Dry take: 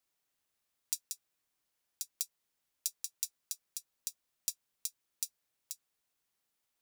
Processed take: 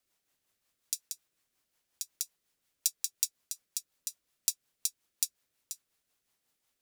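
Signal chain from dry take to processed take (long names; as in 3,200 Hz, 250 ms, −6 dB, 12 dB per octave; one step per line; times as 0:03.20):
rotating-speaker cabinet horn 5.5 Hz
level +7 dB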